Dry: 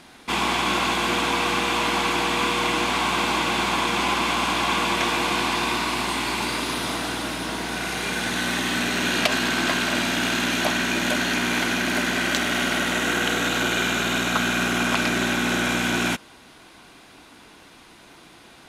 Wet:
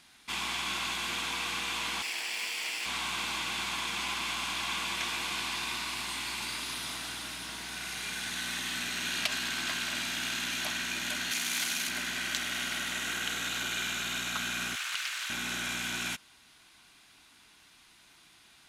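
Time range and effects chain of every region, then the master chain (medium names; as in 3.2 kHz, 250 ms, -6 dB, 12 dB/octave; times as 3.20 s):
2.02–2.86 s: comb filter that takes the minimum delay 0.38 ms + high-pass 510 Hz
11.31–11.89 s: high-pass 100 Hz + treble shelf 3.9 kHz +11 dB + transformer saturation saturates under 1.7 kHz
14.75–15.30 s: high-pass 1.3 kHz + loudspeaker Doppler distortion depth 0.21 ms
whole clip: amplifier tone stack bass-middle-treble 5-5-5; band-stop 520 Hz, Q 12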